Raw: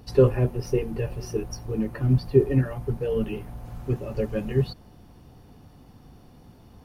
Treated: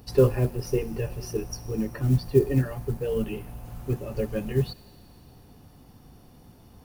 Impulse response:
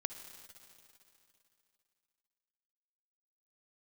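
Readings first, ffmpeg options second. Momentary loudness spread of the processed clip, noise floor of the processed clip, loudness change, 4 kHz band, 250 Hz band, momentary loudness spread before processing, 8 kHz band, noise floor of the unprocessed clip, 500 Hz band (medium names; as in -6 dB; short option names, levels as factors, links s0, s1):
11 LU, -53 dBFS, -1.5 dB, +1.0 dB, -1.5 dB, 11 LU, no reading, -52 dBFS, -1.5 dB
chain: -filter_complex "[0:a]acrusher=bits=9:mode=log:mix=0:aa=0.000001,asplit=2[s0][s1];[s1]aderivative[s2];[1:a]atrim=start_sample=2205[s3];[s2][s3]afir=irnorm=-1:irlink=0,volume=1.06[s4];[s0][s4]amix=inputs=2:normalize=0,volume=0.841"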